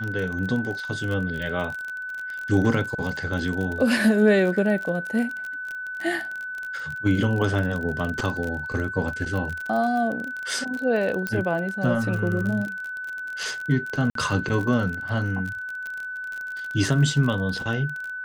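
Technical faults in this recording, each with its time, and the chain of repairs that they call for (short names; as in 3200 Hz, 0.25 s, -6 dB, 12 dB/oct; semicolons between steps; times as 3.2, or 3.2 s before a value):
crackle 33/s -28 dBFS
tone 1500 Hz -30 dBFS
11.27 pop -13 dBFS
14.1–14.15 gap 53 ms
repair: de-click; notch 1500 Hz, Q 30; interpolate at 14.1, 53 ms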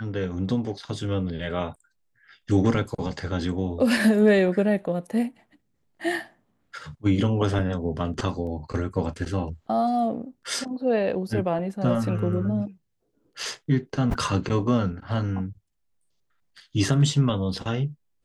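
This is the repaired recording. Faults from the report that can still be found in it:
none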